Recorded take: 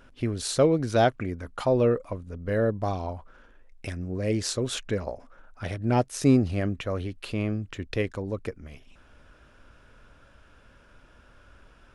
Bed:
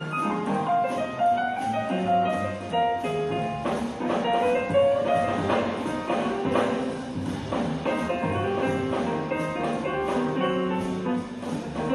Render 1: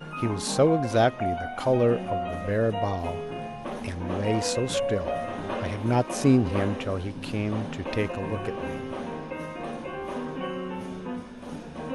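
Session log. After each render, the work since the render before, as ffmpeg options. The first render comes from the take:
-filter_complex "[1:a]volume=-7.5dB[a];[0:a][a]amix=inputs=2:normalize=0"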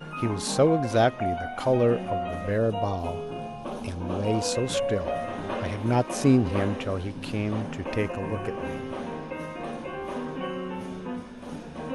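-filter_complex "[0:a]asettb=1/sr,asplit=3[a][b][c];[a]atrim=end=2.584[d];[b]atrim=start=2.58:end=4.52,asetpts=PTS-STARTPTS,afade=t=in:d=0.004:c=qsin,afade=t=out:st=1.936:d=0.004:c=qsin,equalizer=f=1.9k:w=4.2:g=-13.5[e];[c]atrim=start=4.516[f];[d][e]acrossfade=d=0.004:c1=hsin:c2=qsin[g];[g][f]acrossfade=d=0.004:c1=qsin:c2=hsin,asettb=1/sr,asplit=3[h][i][j];[h]atrim=end=7.624[k];[i]atrim=start=7.62:end=8.65,asetpts=PTS-STARTPTS,afade=t=in:d=0.004:c=qsin,afade=t=out:st=1.026:d=0.004:c=qsin,equalizer=f=3.8k:t=o:w=0.45:g=-7[l];[j]atrim=start=8.646[m];[k][l]acrossfade=d=0.004:c1=hsin:c2=qsin[n];[n][m]acrossfade=d=0.004:c1=qsin:c2=hsin"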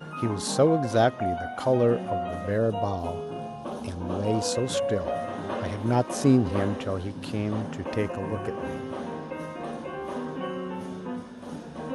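-af "highpass=72,equalizer=f=2.4k:w=2.9:g=-6"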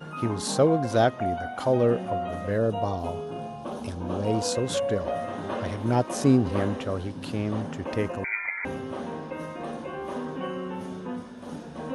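-filter_complex "[0:a]asettb=1/sr,asplit=3[a][b][c];[a]atrim=end=8.244[d];[b]atrim=start=8.24:end=8.65,asetpts=PTS-STARTPTS,afade=t=in:d=0.004:c=qsin,afade=t=out:st=0.406:d=0.004:c=qsin,lowpass=f=2.1k:t=q:w=0.5098,lowpass=f=2.1k:t=q:w=0.6013,lowpass=f=2.1k:t=q:w=0.9,lowpass=f=2.1k:t=q:w=2.563,afreqshift=-2500[e];[c]atrim=start=8.646[f];[d][e]acrossfade=d=0.004:c1=hsin:c2=qsin[g];[g][f]acrossfade=d=0.004:c1=qsin:c2=hsin"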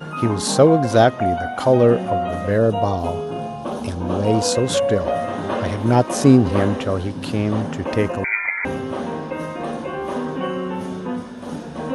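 -af "volume=8dB,alimiter=limit=-2dB:level=0:latency=1"

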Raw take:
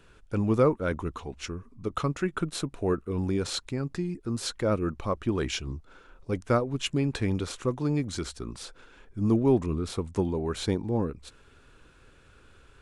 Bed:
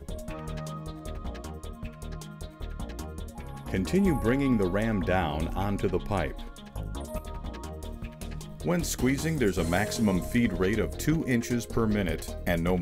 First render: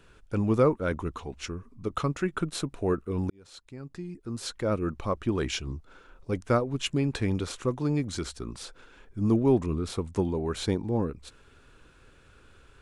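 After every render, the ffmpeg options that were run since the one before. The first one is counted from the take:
-filter_complex "[0:a]asplit=2[a][b];[a]atrim=end=3.3,asetpts=PTS-STARTPTS,afade=t=out:st=3.296:d=0.004:c=hsin[c];[b]atrim=start=3.3,asetpts=PTS-STARTPTS,afade=t=in:d=1.68[d];[c][d]concat=n=2:v=0:a=1"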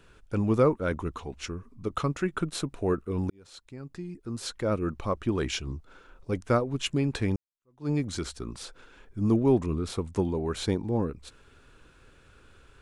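-filter_complex "[0:a]asplit=2[a][b];[a]atrim=end=7.36,asetpts=PTS-STARTPTS,afade=t=out:st=7.356:d=0.004:c=hsin[c];[b]atrim=start=7.36,asetpts=PTS-STARTPTS,afade=t=in:d=0.53:c=exp[d];[c][d]concat=n=2:v=0:a=1"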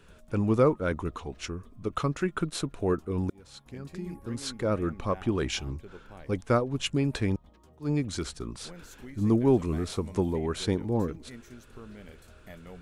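-filter_complex "[1:a]volume=-20dB[a];[0:a][a]amix=inputs=2:normalize=0"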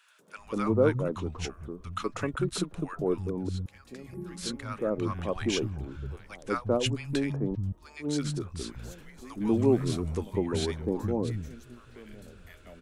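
-filter_complex "[0:a]acrossover=split=170|990[a][b][c];[b]adelay=190[d];[a]adelay=360[e];[e][d][c]amix=inputs=3:normalize=0"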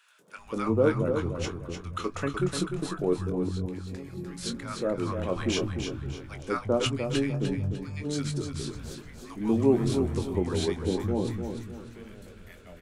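-filter_complex "[0:a]asplit=2[a][b];[b]adelay=22,volume=-9dB[c];[a][c]amix=inputs=2:normalize=0,aecho=1:1:300|600|900|1200:0.447|0.152|0.0516|0.0176"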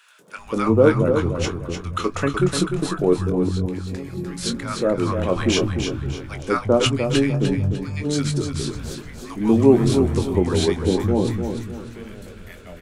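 -af "volume=8.5dB"

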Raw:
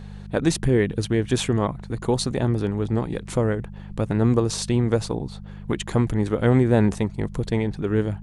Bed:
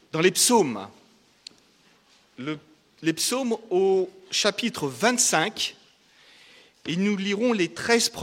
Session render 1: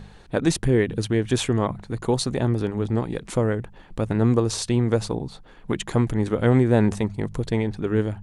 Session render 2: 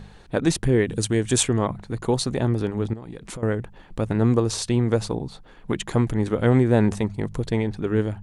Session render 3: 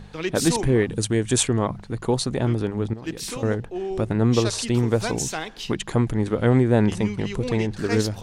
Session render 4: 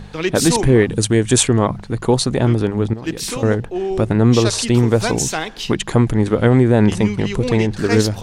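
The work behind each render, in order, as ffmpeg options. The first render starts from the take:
-af "bandreject=f=50:t=h:w=4,bandreject=f=100:t=h:w=4,bandreject=f=150:t=h:w=4,bandreject=f=200:t=h:w=4"
-filter_complex "[0:a]asettb=1/sr,asplit=3[a][b][c];[a]atrim=end=0.874[d];[b]atrim=start=0.87:end=1.43,asetpts=PTS-STARTPTS,afade=t=in:d=0.004:c=qsin,afade=t=out:st=0.556:d=0.004:c=qsin,equalizer=f=8k:w=1.2:g=13[e];[c]atrim=start=1.426[f];[d][e]acrossfade=d=0.004:c1=hsin:c2=qsin[g];[g][f]acrossfade=d=0.004:c1=qsin:c2=hsin,asettb=1/sr,asplit=3[h][i][j];[h]atrim=end=2.934[k];[i]atrim=start=2.93:end=3.43,asetpts=PTS-STARTPTS,afade=t=in:d=0.004:c=qsin,afade=t=out:st=0.496:d=0.004:c=qsin,acompressor=threshold=-31dB:ratio=12:attack=3.2:release=140:knee=1:detection=peak[l];[j]atrim=start=3.426[m];[k][l]acrossfade=d=0.004:c1=hsin:c2=qsin[n];[n][m]acrossfade=d=0.004:c1=qsin:c2=hsin"
-filter_complex "[1:a]volume=-8dB[a];[0:a][a]amix=inputs=2:normalize=0"
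-af "volume=7dB,alimiter=limit=-2dB:level=0:latency=1"

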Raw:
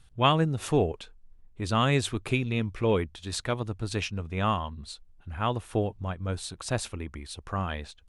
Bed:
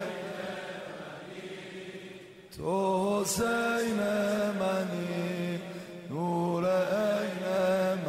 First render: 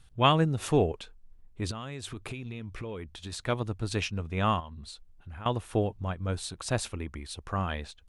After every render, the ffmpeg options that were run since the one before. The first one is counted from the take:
-filter_complex "[0:a]asettb=1/sr,asplit=3[a][b][c];[a]atrim=end=1.714[d];[b]atrim=start=1.71:end=3.47,asetpts=PTS-STARTPTS,afade=t=in:d=0.004:c=qsin,afade=t=out:st=1.756:d=0.004:c=qsin,acompressor=threshold=-34dB:ratio=10:attack=3.2:release=140:knee=1:detection=peak[e];[c]atrim=start=3.466[f];[d][e]acrossfade=d=0.004:c1=hsin:c2=qsin[g];[g][f]acrossfade=d=0.004:c1=qsin:c2=hsin,asettb=1/sr,asplit=3[h][i][j];[h]atrim=end=4.604[k];[i]atrim=start=4.6:end=5.46,asetpts=PTS-STARTPTS,afade=t=in:d=0.004:c=qsin,afade=t=out:st=0.856:d=0.004:c=qsin,acompressor=threshold=-40dB:ratio=4:attack=3.2:release=140:knee=1:detection=peak[l];[j]atrim=start=5.456[m];[k][l]acrossfade=d=0.004:c1=hsin:c2=qsin[n];[n][m]acrossfade=d=0.004:c1=qsin:c2=hsin"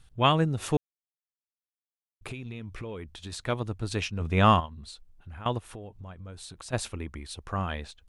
-filter_complex "[0:a]asplit=3[a][b][c];[a]afade=t=out:st=4.2:d=0.02[d];[b]acontrast=82,afade=t=in:st=4.2:d=0.02,afade=t=out:st=4.65:d=0.02[e];[c]afade=t=in:st=4.65:d=0.02[f];[d][e][f]amix=inputs=3:normalize=0,asplit=3[g][h][i];[g]afade=t=out:st=5.58:d=0.02[j];[h]acompressor=threshold=-40dB:ratio=5:attack=3.2:release=140:knee=1:detection=peak,afade=t=in:st=5.58:d=0.02,afade=t=out:st=6.72:d=0.02[k];[i]afade=t=in:st=6.72:d=0.02[l];[j][k][l]amix=inputs=3:normalize=0,asplit=3[m][n][o];[m]atrim=end=0.77,asetpts=PTS-STARTPTS,afade=t=out:st=0.766:d=0.004:c=hsin[p];[n]atrim=start=0.77:end=2.21,asetpts=PTS-STARTPTS,volume=0[q];[o]atrim=start=2.21,asetpts=PTS-STARTPTS,afade=t=in:d=0.004:c=hsin[r];[p][q][r]concat=n=3:v=0:a=1"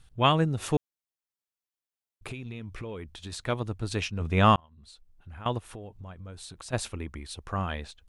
-filter_complex "[0:a]asplit=2[a][b];[a]atrim=end=4.56,asetpts=PTS-STARTPTS,afade=t=out:st=4.556:d=0.004:c=hsin[c];[b]atrim=start=4.56,asetpts=PTS-STARTPTS,afade=t=in:d=1.17:c=qsin[d];[c][d]concat=n=2:v=0:a=1"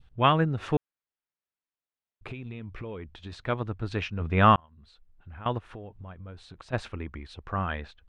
-af "lowpass=3k,adynamicequalizer=threshold=0.00708:dfrequency=1500:dqfactor=1.7:tfrequency=1500:tqfactor=1.7:attack=5:release=100:ratio=0.375:range=2.5:mode=boostabove:tftype=bell"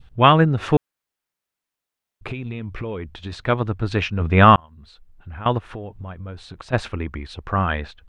-af "volume=9dB,alimiter=limit=-1dB:level=0:latency=1"

